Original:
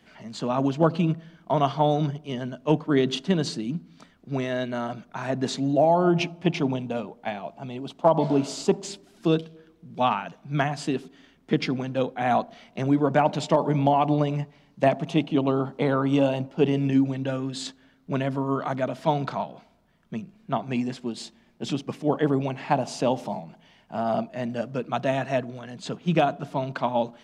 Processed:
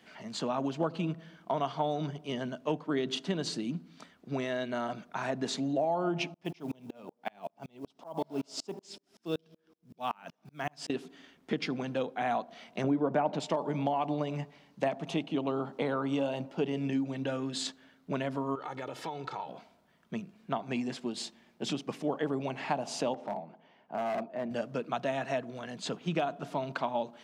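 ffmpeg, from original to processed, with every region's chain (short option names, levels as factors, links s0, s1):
-filter_complex "[0:a]asettb=1/sr,asplit=3[s0][s1][s2];[s0]atrim=end=6.344[s3];[s1]atrim=start=6.34:end=10.9,asetpts=PTS-STARTPTS,afade=t=in:d=0.004:c=qsin,afade=t=out:st=4.556:d=0.004:c=qsin,equalizer=f=5300:t=o:w=0.24:g=8.5,acrusher=bits=8:mode=log:mix=0:aa=0.000001,aeval=exprs='val(0)*pow(10,-36*if(lt(mod(-5.3*n/s,1),2*abs(-5.3)/1000),1-mod(-5.3*n/s,1)/(2*abs(-5.3)/1000),(mod(-5.3*n/s,1)-2*abs(-5.3)/1000)/(1-2*abs(-5.3)/1000))/20)':c=same[s4];[s2]atrim=start=10.896[s5];[s3][s4]acrossfade=d=0.004:c1=hsin:c2=qsin[s6];[s6][s5]acrossfade=d=0.004:c1=qsin:c2=hsin,asettb=1/sr,asplit=3[s7][s8][s9];[s7]atrim=end=12.844[s10];[s8]atrim=start=12.84:end=13.4,asetpts=PTS-STARTPTS,afade=t=in:d=0.004:c=qsin,afade=t=out:st=0.556:d=0.004:c=qsin,lowpass=f=3300:p=1,equalizer=f=340:w=0.31:g=6.5,acompressor=mode=upward:threshold=0.158:ratio=2.5:attack=3.2:release=140:knee=2.83:detection=peak[s11];[s9]atrim=start=13.396[s12];[s10][s11]acrossfade=d=0.004:c1=hsin:c2=qsin[s13];[s13][s12]acrossfade=d=0.004:c1=qsin:c2=hsin,asettb=1/sr,asplit=3[s14][s15][s16];[s14]atrim=end=18.554[s17];[s15]atrim=start=18.55:end=19.49,asetpts=PTS-STARTPTS,afade=t=in:d=0.004:c=qsin,afade=t=out:st=0.936:d=0.004:c=qsin,aecho=1:1:2.3:0.77,atrim=end_sample=41454,acompressor=threshold=0.0224:ratio=6:attack=3.2:release=140:knee=1:detection=peak[s18];[s16]atrim=start=19.486[s19];[s17][s18]acrossfade=d=0.004:c1=hsin:c2=qsin[s20];[s20][s19]acrossfade=d=0.004:c1=qsin:c2=hsin,asettb=1/sr,asplit=3[s21][s22][s23];[s21]atrim=end=23.144[s24];[s22]atrim=start=23.14:end=24.51,asetpts=PTS-STARTPTS,afade=t=in:d=0.004:c=qsin,afade=t=out:st=1.366:d=0.004:c=qsin,bandpass=f=500:t=q:w=0.56,volume=17.8,asoftclip=hard,volume=0.0562[s25];[s23]atrim=start=24.506[s26];[s24][s25]acrossfade=d=0.004:c1=hsin:c2=qsin[s27];[s27][s26]acrossfade=d=0.004:c1=qsin:c2=hsin,highpass=f=250:p=1,acompressor=threshold=0.0282:ratio=2.5"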